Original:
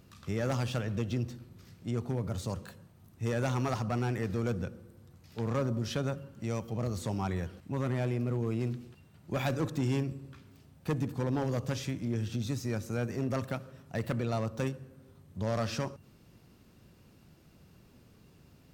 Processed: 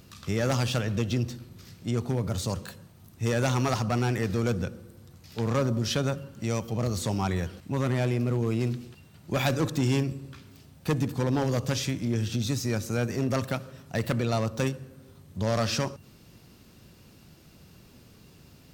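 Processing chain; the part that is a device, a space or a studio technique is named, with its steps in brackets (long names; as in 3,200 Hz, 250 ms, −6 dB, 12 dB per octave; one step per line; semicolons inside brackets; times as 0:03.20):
presence and air boost (parametric band 4,500 Hz +4.5 dB 1.8 octaves; high-shelf EQ 9,000 Hz +5.5 dB)
level +5 dB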